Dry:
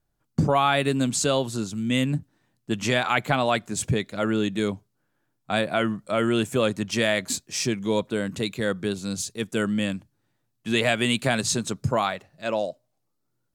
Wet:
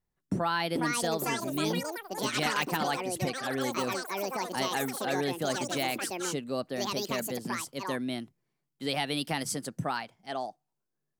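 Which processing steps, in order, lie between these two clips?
echoes that change speed 0.642 s, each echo +6 st, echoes 3; varispeed +21%; gain -8.5 dB

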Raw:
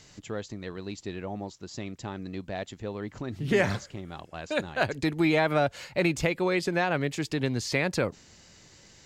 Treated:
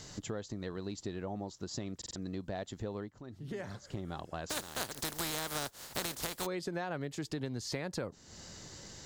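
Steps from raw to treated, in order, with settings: 4.49–6.45 spectral contrast lowered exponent 0.29; bell 2400 Hz -8 dB 0.68 oct; 2.99–3.95 dip -18 dB, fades 0.12 s; compressor 4:1, threshold -43 dBFS, peak gain reduction 18.5 dB; stuck buffer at 1.97, samples 2048, times 3; gain +5.5 dB

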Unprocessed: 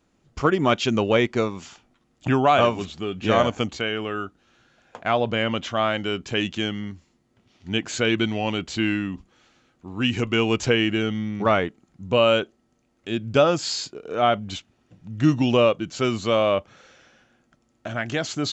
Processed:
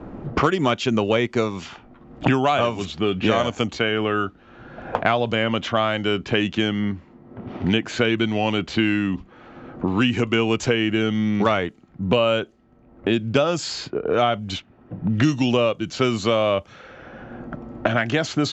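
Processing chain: low-pass opened by the level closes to 970 Hz, open at -20 dBFS; three-band squash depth 100%; gain +1 dB

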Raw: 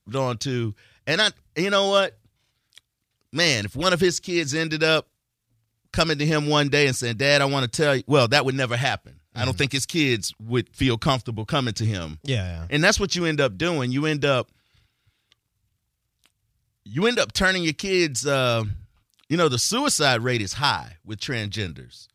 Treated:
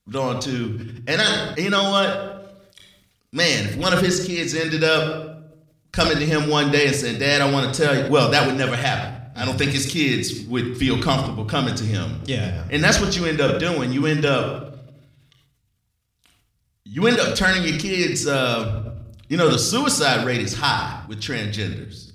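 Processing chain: reverb RT60 0.85 s, pre-delay 4 ms, DRR 4.5 dB; sustainer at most 55 dB/s

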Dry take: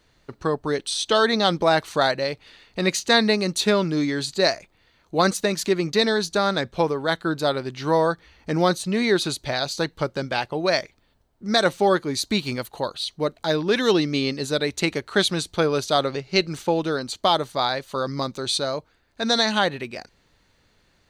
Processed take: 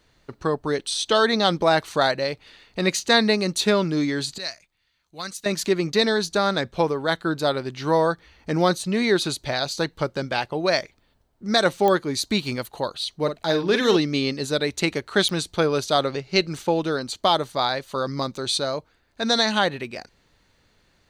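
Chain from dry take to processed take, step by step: 4.38–5.46 passive tone stack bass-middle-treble 5-5-5; 13.15–13.97 doubler 48 ms -8 dB; pops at 11.88/15.29, -10 dBFS

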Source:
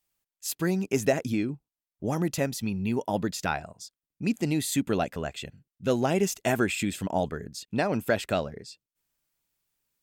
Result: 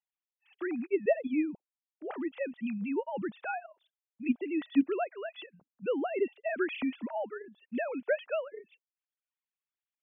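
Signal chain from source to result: sine-wave speech; gain -5 dB

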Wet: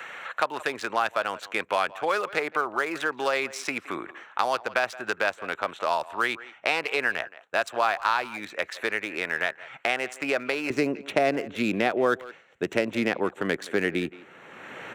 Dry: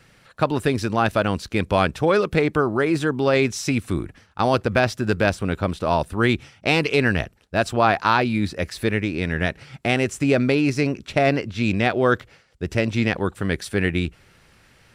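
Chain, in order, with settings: Wiener smoothing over 9 samples; HPF 840 Hz 12 dB/oct, from 10.7 s 300 Hz; dynamic EQ 3500 Hz, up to -4 dB, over -35 dBFS, Q 0.71; speakerphone echo 0.17 s, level -20 dB; three-band squash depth 70%

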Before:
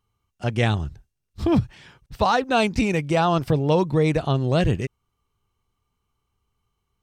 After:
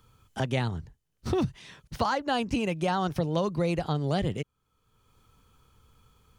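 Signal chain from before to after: varispeed +10%; three-band squash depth 70%; gain -7.5 dB

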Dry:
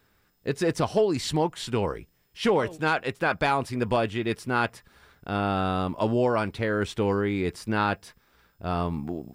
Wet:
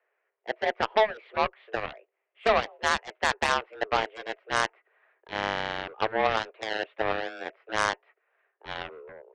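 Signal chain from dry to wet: mistuned SSB +220 Hz 190–2400 Hz; added harmonics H 7 -14 dB, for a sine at -10 dBFS

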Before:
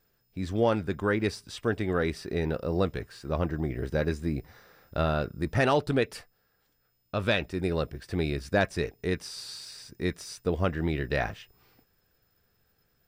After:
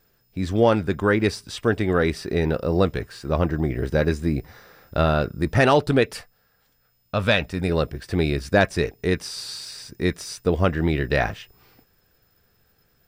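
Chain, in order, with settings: 6.13–7.69 bell 350 Hz -10.5 dB 0.34 oct; gain +7 dB

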